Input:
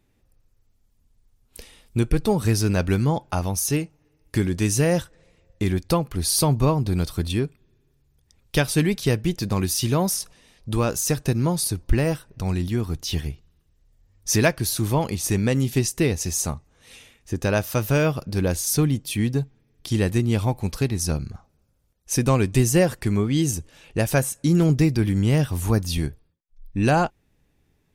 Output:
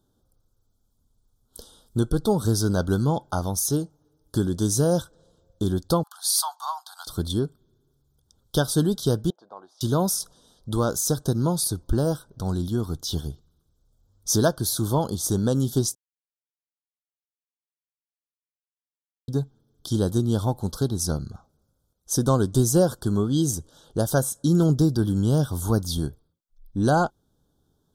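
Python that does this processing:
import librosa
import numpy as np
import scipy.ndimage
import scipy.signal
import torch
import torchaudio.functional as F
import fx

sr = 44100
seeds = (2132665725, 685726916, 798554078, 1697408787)

y = fx.steep_highpass(x, sr, hz=760.0, slope=72, at=(6.03, 7.07))
y = fx.ladder_bandpass(y, sr, hz=870.0, resonance_pct=40, at=(9.3, 9.81))
y = fx.edit(y, sr, fx.silence(start_s=15.95, length_s=3.33), tone=tone)
y = scipy.signal.sosfilt(scipy.signal.ellip(3, 1.0, 40, [1500.0, 3300.0], 'bandstop', fs=sr, output='sos'), y)
y = fx.low_shelf(y, sr, hz=80.0, db=-7.0)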